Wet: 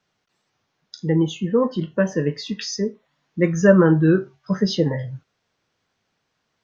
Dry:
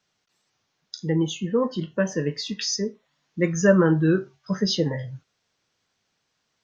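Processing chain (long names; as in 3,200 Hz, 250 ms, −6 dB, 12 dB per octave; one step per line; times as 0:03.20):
high-shelf EQ 3,600 Hz −10 dB
level +4 dB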